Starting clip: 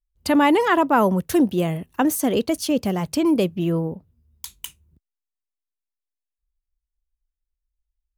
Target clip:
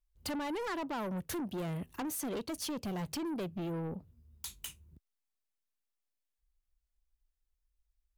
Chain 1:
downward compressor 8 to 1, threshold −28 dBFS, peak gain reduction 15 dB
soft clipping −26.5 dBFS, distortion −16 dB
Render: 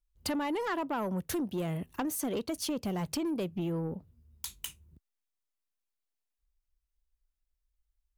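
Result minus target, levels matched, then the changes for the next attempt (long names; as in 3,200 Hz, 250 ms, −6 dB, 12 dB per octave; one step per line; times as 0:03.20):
soft clipping: distortion −7 dB
change: soft clipping −34 dBFS, distortion −9 dB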